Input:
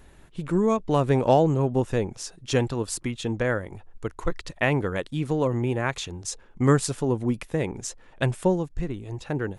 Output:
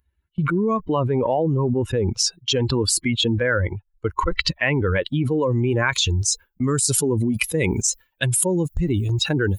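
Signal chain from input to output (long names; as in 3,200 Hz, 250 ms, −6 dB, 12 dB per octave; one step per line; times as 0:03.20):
spectral dynamics exaggerated over time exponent 2
high-pass filter 160 Hz 6 dB per octave
noise gate with hold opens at −50 dBFS
bass and treble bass +1 dB, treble −12 dB, from 0:05.35 treble +5 dB, from 0:06.74 treble +13 dB
envelope flattener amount 100%
level −2 dB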